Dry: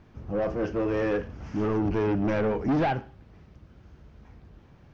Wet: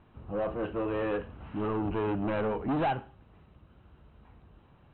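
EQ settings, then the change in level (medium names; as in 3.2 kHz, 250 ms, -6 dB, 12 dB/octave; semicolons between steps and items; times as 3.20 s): rippled Chebyshev low-pass 4 kHz, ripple 6 dB; 0.0 dB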